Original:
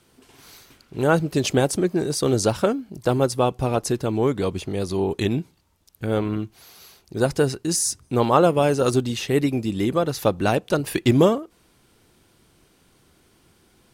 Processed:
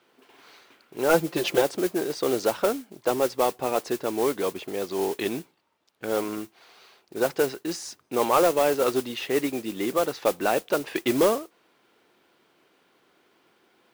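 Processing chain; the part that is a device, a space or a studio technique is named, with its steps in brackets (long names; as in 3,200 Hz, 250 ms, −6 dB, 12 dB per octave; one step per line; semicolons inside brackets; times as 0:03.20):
carbon microphone (band-pass filter 370–3,200 Hz; soft clipping −11 dBFS, distortion −17 dB; noise that follows the level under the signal 14 dB)
0:01.09–0:01.62: comb filter 5.8 ms, depth 84%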